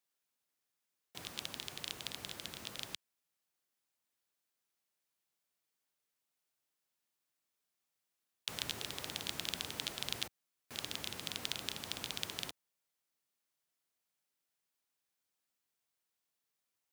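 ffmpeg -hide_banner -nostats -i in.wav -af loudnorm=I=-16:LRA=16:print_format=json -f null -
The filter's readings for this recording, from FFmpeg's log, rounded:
"input_i" : "-41.4",
"input_tp" : "-13.5",
"input_lra" : "7.5",
"input_thresh" : "-51.6",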